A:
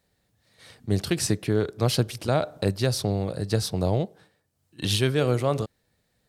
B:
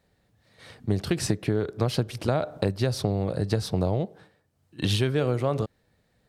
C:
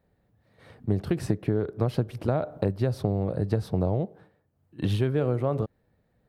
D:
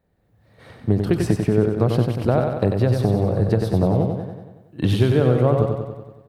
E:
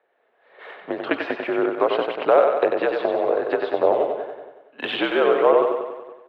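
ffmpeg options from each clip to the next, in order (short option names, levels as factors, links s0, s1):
-af "highshelf=f=3800:g=-9.5,acompressor=threshold=0.0562:ratio=5,volume=1.68"
-af "equalizer=f=6100:t=o:w=2.8:g=-14.5"
-filter_complex "[0:a]dynaudnorm=f=180:g=3:m=2.24,asplit=2[s0][s1];[s1]aecho=0:1:94|188|282|376|470|564|658|752:0.562|0.332|0.196|0.115|0.0681|0.0402|0.0237|0.014[s2];[s0][s2]amix=inputs=2:normalize=0"
-af "highpass=f=570:t=q:w=0.5412,highpass=f=570:t=q:w=1.307,lowpass=f=3300:t=q:w=0.5176,lowpass=f=3300:t=q:w=0.7071,lowpass=f=3300:t=q:w=1.932,afreqshift=-61,aphaser=in_gain=1:out_gain=1:delay=4.8:decay=0.24:speed=1.8:type=sinusoidal,volume=2.66"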